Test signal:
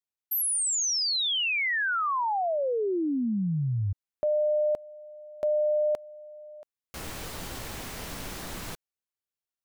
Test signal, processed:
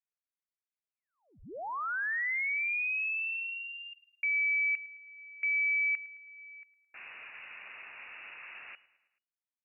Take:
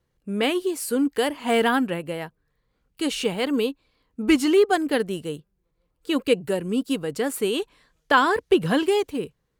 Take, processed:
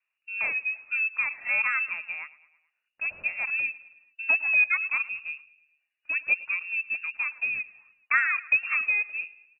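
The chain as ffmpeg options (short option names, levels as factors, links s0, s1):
-filter_complex "[0:a]aeval=exprs='0.473*(cos(1*acos(clip(val(0)/0.473,-1,1)))-cos(1*PI/2))+0.00944*(cos(3*acos(clip(val(0)/0.473,-1,1)))-cos(3*PI/2))':c=same,acrossover=split=190 2000:gain=0.141 1 0.0794[s0][s1][s2];[s0][s1][s2]amix=inputs=3:normalize=0,asplit=2[s3][s4];[s4]aecho=0:1:108|216|324|432:0.1|0.056|0.0314|0.0176[s5];[s3][s5]amix=inputs=2:normalize=0,lowpass=f=2500:t=q:w=0.5098,lowpass=f=2500:t=q:w=0.6013,lowpass=f=2500:t=q:w=0.9,lowpass=f=2500:t=q:w=2.563,afreqshift=-2900,volume=0.631"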